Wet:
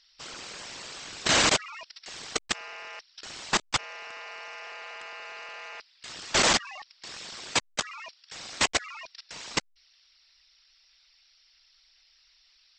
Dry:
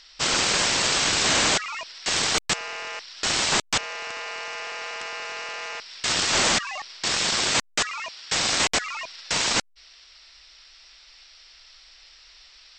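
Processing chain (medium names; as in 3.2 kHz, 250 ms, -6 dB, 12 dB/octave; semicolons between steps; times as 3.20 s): resonances exaggerated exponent 1.5; 4.72–6.09 s: band-stop 5.5 kHz, Q 11; level held to a coarse grid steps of 21 dB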